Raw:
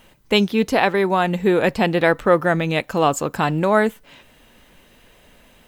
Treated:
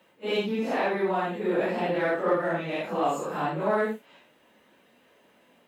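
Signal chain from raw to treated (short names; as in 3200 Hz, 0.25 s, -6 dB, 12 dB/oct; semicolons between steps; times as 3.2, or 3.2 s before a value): phase scrambler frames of 0.2 s; in parallel at -6 dB: soft clip -22 dBFS, distortion -7 dB; on the sum: HPF 240 Hz 12 dB/oct; high shelf 2700 Hz -10 dB; gain -8.5 dB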